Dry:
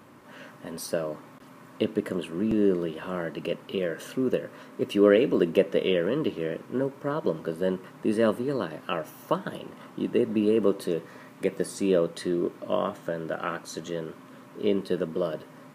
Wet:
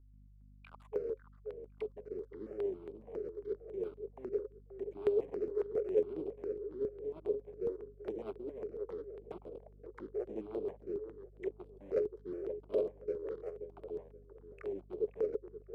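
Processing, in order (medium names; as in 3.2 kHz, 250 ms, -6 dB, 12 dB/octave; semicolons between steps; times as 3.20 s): coarse spectral quantiser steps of 15 dB; bit crusher 5-bit; integer overflow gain 16 dB; auto-wah 530–3800 Hz, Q 20, down, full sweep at -31.5 dBFS; formant shift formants -4 st; on a send: filtered feedback delay 527 ms, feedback 30%, low-pass 1.4 kHz, level -10 dB; on the sum: hum 50 Hz, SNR 22 dB; stepped phaser 7.3 Hz 710–6300 Hz; trim +6.5 dB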